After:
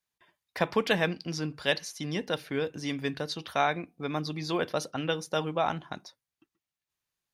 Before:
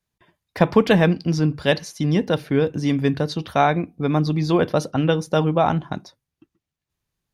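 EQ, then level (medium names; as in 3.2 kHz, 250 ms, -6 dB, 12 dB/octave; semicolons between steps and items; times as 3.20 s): dynamic bell 920 Hz, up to -3 dB, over -31 dBFS, Q 0.88; bass shelf 170 Hz -3.5 dB; bass shelf 470 Hz -12 dB; -3.0 dB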